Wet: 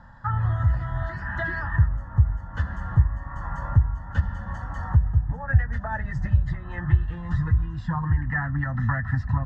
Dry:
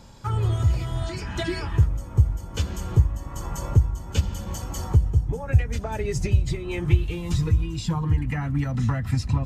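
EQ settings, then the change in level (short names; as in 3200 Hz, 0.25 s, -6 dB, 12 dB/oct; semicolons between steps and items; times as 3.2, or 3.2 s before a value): synth low-pass 1800 Hz, resonance Q 12; fixed phaser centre 970 Hz, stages 4; 0.0 dB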